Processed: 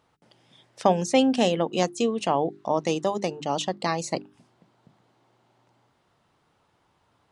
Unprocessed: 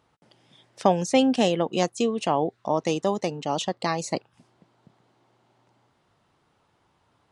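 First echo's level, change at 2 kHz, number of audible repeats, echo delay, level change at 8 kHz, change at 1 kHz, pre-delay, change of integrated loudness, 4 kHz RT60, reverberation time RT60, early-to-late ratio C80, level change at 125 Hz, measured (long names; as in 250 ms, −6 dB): no echo audible, 0.0 dB, no echo audible, no echo audible, 0.0 dB, 0.0 dB, no reverb audible, 0.0 dB, no reverb audible, no reverb audible, no reverb audible, −0.5 dB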